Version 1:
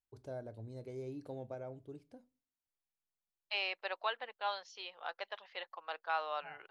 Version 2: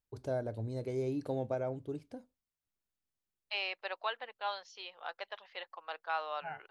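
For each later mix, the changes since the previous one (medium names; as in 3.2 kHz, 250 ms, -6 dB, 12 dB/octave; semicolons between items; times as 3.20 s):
first voice +10.5 dB; reverb: off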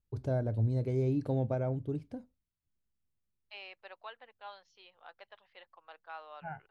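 second voice -10.5 dB; master: add tone controls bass +11 dB, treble -5 dB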